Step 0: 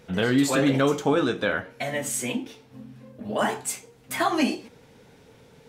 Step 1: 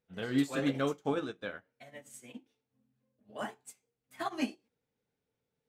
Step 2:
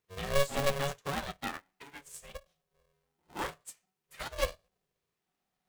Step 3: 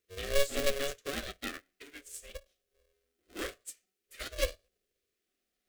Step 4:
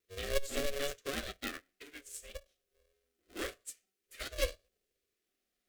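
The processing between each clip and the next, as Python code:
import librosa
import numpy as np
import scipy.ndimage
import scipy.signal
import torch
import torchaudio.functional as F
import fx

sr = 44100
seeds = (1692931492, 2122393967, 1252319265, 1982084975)

y1 = fx.notch(x, sr, hz=950.0, q=21.0)
y1 = fx.upward_expand(y1, sr, threshold_db=-35.0, expansion=2.5)
y1 = y1 * 10.0 ** (-6.5 / 20.0)
y2 = fx.phaser_stages(y1, sr, stages=2, low_hz=130.0, high_hz=1200.0, hz=0.49, feedback_pct=5)
y2 = y2 * np.sign(np.sin(2.0 * np.pi * 280.0 * np.arange(len(y2)) / sr))
y2 = y2 * 10.0 ** (3.5 / 20.0)
y3 = fx.fixed_phaser(y2, sr, hz=370.0, stages=4)
y3 = y3 * 10.0 ** (2.5 / 20.0)
y4 = fx.wow_flutter(y3, sr, seeds[0], rate_hz=2.1, depth_cents=25.0)
y4 = fx.transformer_sat(y4, sr, knee_hz=71.0)
y4 = y4 * 10.0 ** (-1.0 / 20.0)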